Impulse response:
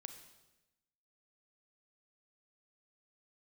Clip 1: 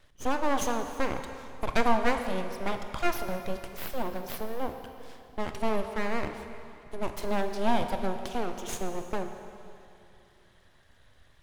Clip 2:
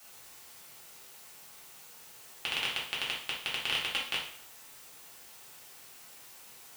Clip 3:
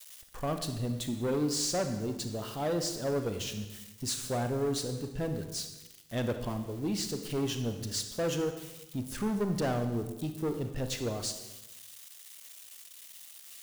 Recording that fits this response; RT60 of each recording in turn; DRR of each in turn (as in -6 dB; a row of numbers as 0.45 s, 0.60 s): 3; 2.7 s, 0.60 s, 1.0 s; 6.5 dB, -6.5 dB, 7.0 dB